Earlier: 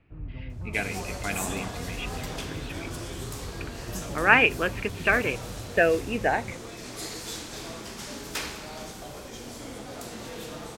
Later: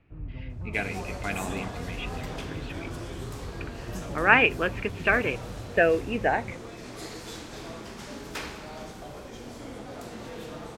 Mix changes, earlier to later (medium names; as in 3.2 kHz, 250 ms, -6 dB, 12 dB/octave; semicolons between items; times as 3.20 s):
speech: remove distance through air 150 m; master: add treble shelf 3.7 kHz -10 dB